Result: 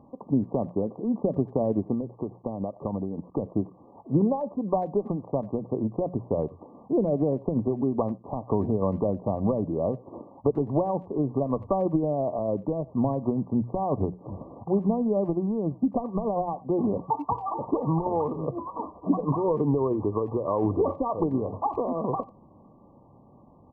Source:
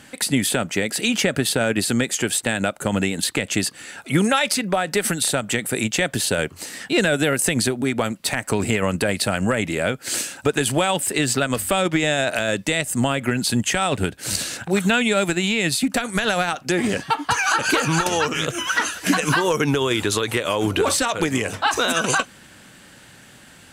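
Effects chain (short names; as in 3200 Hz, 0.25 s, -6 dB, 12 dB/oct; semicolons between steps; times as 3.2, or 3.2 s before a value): treble ducked by the level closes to 750 Hz, closed at -15 dBFS; notches 60/120/180 Hz; 1.93–3.26 compressor, threshold -23 dBFS, peak gain reduction 6.5 dB; brick-wall FIR low-pass 1200 Hz; speakerphone echo 90 ms, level -21 dB; gain -3 dB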